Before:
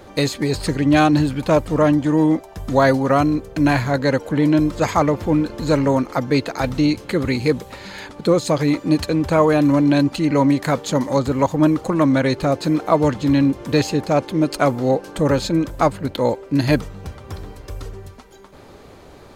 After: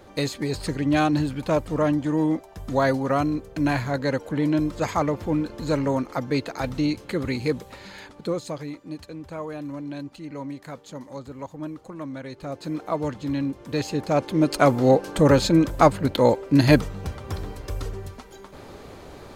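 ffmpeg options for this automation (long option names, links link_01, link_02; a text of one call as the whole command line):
ffmpeg -i in.wav -af "volume=13dB,afade=type=out:start_time=7.81:duration=0.95:silence=0.251189,afade=type=in:start_time=12.31:duration=0.47:silence=0.398107,afade=type=in:start_time=13.69:duration=1.19:silence=0.266073" out.wav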